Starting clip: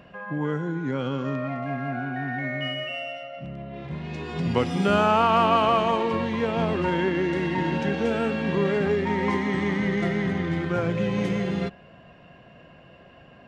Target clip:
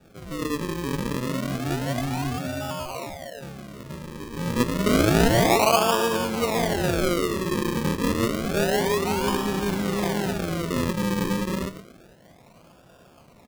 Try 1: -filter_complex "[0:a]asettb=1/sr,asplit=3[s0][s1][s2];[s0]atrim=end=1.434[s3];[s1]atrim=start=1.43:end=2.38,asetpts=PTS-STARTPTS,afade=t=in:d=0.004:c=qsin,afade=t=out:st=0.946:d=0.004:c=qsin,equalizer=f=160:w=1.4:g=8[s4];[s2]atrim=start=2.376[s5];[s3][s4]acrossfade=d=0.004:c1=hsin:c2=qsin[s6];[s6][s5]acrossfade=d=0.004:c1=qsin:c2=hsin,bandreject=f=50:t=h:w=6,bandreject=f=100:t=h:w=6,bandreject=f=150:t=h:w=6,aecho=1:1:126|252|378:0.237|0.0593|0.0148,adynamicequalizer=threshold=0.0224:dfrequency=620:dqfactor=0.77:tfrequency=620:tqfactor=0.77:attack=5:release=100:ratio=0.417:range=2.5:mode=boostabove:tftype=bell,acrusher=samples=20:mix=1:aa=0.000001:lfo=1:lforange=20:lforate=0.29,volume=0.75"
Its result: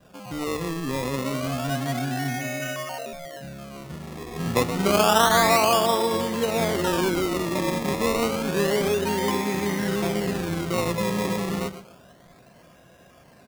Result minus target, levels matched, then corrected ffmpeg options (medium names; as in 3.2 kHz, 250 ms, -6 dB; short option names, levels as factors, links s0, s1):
decimation with a swept rate: distortion -10 dB
-filter_complex "[0:a]asettb=1/sr,asplit=3[s0][s1][s2];[s0]atrim=end=1.434[s3];[s1]atrim=start=1.43:end=2.38,asetpts=PTS-STARTPTS,afade=t=in:d=0.004:c=qsin,afade=t=out:st=0.946:d=0.004:c=qsin,equalizer=f=160:w=1.4:g=8[s4];[s2]atrim=start=2.376[s5];[s3][s4]acrossfade=d=0.004:c1=hsin:c2=qsin[s6];[s6][s5]acrossfade=d=0.004:c1=qsin:c2=hsin,bandreject=f=50:t=h:w=6,bandreject=f=100:t=h:w=6,bandreject=f=150:t=h:w=6,aecho=1:1:126|252|378:0.237|0.0593|0.0148,adynamicequalizer=threshold=0.0224:dfrequency=620:dqfactor=0.77:tfrequency=620:tqfactor=0.77:attack=5:release=100:ratio=0.417:range=2.5:mode=boostabove:tftype=bell,acrusher=samples=42:mix=1:aa=0.000001:lfo=1:lforange=42:lforate=0.29,volume=0.75"